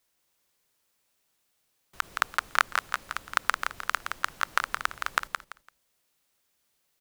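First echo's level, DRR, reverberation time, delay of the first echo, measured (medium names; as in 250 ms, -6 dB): -6.0 dB, no reverb, no reverb, 169 ms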